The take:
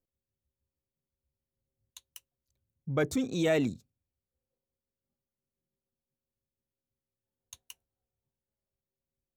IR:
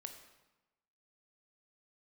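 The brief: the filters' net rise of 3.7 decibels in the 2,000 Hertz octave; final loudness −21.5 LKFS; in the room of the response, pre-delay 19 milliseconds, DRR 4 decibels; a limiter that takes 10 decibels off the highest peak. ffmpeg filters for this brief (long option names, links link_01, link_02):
-filter_complex "[0:a]equalizer=frequency=2000:width_type=o:gain=4.5,alimiter=level_in=2.5dB:limit=-24dB:level=0:latency=1,volume=-2.5dB,asplit=2[link_01][link_02];[1:a]atrim=start_sample=2205,adelay=19[link_03];[link_02][link_03]afir=irnorm=-1:irlink=0,volume=0.5dB[link_04];[link_01][link_04]amix=inputs=2:normalize=0,volume=13.5dB"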